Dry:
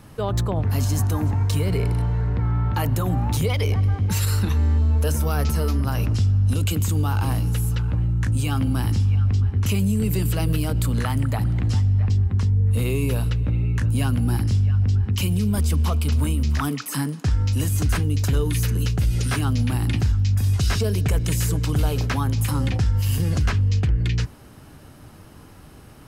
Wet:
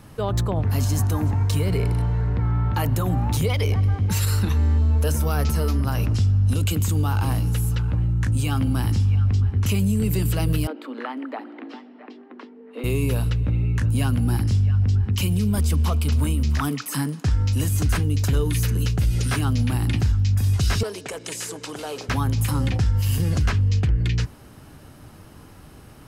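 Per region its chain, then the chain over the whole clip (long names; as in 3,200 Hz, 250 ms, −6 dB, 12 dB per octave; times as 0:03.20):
0:10.67–0:12.84: Butterworth high-pass 250 Hz 72 dB per octave + high-frequency loss of the air 370 metres
0:20.83–0:22.09: Chebyshev band-pass filter 430–8,600 Hz + saturating transformer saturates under 700 Hz
whole clip: no processing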